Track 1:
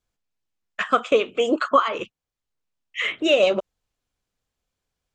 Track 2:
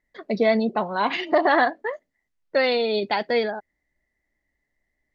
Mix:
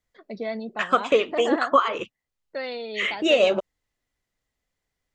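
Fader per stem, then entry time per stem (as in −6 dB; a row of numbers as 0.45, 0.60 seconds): −1.0, −11.0 decibels; 0.00, 0.00 seconds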